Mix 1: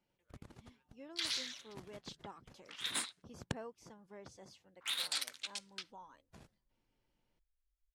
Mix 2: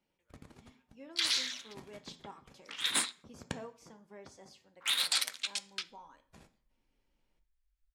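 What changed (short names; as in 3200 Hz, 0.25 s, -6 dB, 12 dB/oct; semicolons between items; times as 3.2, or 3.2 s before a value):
background +6.5 dB; reverb: on, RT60 0.50 s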